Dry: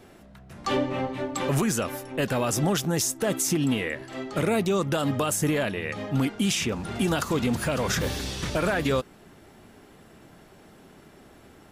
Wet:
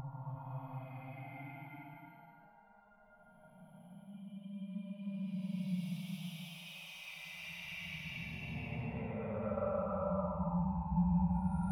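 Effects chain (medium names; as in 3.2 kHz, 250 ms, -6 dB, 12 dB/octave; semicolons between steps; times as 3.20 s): expander on every frequency bin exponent 2; in parallel at -8 dB: saturation -33.5 dBFS, distortion -7 dB; on the sum: compression 5:1, threshold -38 dBFS, peak gain reduction 14 dB; slow attack 289 ms; FFT filter 110 Hz 0 dB, 170 Hz +12 dB, 260 Hz -20 dB, 400 Hz -22 dB, 600 Hz +11 dB, 940 Hz +8 dB, 1.7 kHz -5 dB, 5.2 kHz -22 dB, 7.3 kHz -30 dB, 11 kHz -4 dB; reverse; upward compressor, threshold -51 dBFS; reverse; Paulstretch 18×, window 0.10 s, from 6.18 s; peaking EQ 110 Hz -11.5 dB 0.56 oct; trim +9 dB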